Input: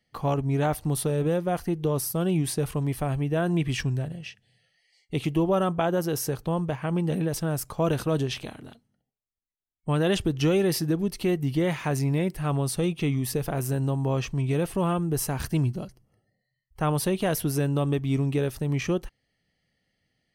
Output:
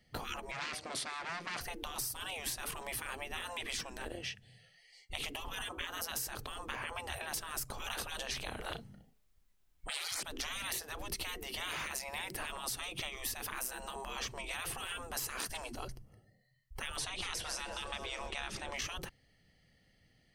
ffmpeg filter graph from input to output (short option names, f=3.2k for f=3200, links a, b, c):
-filter_complex "[0:a]asettb=1/sr,asplit=3[a][b][c];[a]atrim=end=0.514[d];[b]atrim=start=0.51:end=1.61,asetpts=PTS-STARTPTS,afade=t=in:d=0.004:c=qsin,afade=t=out:st=1.096:d=0.004:c=qsin,asoftclip=type=hard:threshold=-29dB,highpass=250,equalizer=f=880:t=q:w=4:g=-6,equalizer=f=2.2k:t=q:w=4:g=6,equalizer=f=4.6k:t=q:w=4:g=4,lowpass=f=7.9k:w=0.5412,lowpass=f=7.9k:w=1.3066[e];[c]atrim=start=1.606[f];[d][e]acrossfade=d=0.004:c1=hsin:c2=qsin[g];[g][f]acrossfade=d=0.004:c1=qsin:c2=hsin,asettb=1/sr,asplit=3[h][i][j];[h]atrim=end=8.604[k];[i]atrim=start=8.6:end=10.23,asetpts=PTS-STARTPTS,afade=t=in:d=0.004:c=qsin,afade=t=out:st=1.626:d=0.004:c=qsin,bass=f=250:g=3,treble=f=4k:g=-3,aeval=exprs='0.266*sin(PI/2*2*val(0)/0.266)':c=same,asplit=2[l][m];[m]adelay=35,volume=-8dB[n];[l][n]amix=inputs=2:normalize=0,atrim=end_sample=71883[o];[j]atrim=start=10.226[p];[k][o]acrossfade=d=0.004:c1=hsin:c2=qsin[q];[q][p]acrossfade=d=0.004:c1=qsin:c2=hsin,asettb=1/sr,asplit=3[r][s][t];[r]atrim=end=15.084[u];[s]atrim=start=15.08:end=15.75,asetpts=PTS-STARTPTS,afade=t=in:d=0.004:c=qsin,afade=t=out:st=0.666:d=0.004:c=qsin,lowpass=11k,highshelf=f=6.8k:g=6,aeval=exprs='clip(val(0),-1,0.0891)':c=same[v];[t]atrim=start=15.746[w];[u][v]acrossfade=d=0.004:c1=hsin:c2=qsin[x];[x][w]acrossfade=d=0.004:c1=qsin:c2=hsin,asettb=1/sr,asplit=3[y][z][aa];[y]atrim=end=16.974[ab];[z]atrim=start=16.97:end=18.77,asetpts=PTS-STARTPTS,afade=t=in:d=0.004:c=qsin,afade=t=out:st=1.796:d=0.004:c=qsin,lowpass=f=8k:w=0.5412,lowpass=f=8k:w=1.3066,asplit=6[ac][ad][ae][af][ag][ah];[ad]adelay=218,afreqshift=-32,volume=-17dB[ai];[ae]adelay=436,afreqshift=-64,volume=-21.9dB[aj];[af]adelay=654,afreqshift=-96,volume=-26.8dB[ak];[ag]adelay=872,afreqshift=-128,volume=-31.6dB[al];[ah]adelay=1090,afreqshift=-160,volume=-36.5dB[am];[ac][ai][aj][ak][al][am]amix=inputs=6:normalize=0,atrim=end_sample=79380[an];[aa]atrim=start=18.766[ao];[ab][an]acrossfade=d=0.004:c1=hsin:c2=qsin[ap];[ap][ao]acrossfade=d=0.004:c1=qsin:c2=hsin,afftfilt=real='re*lt(hypot(re,im),0.0447)':imag='im*lt(hypot(re,im),0.0447)':win_size=1024:overlap=0.75,lowshelf=f=78:g=9,acompressor=threshold=-40dB:ratio=6,volume=4.5dB"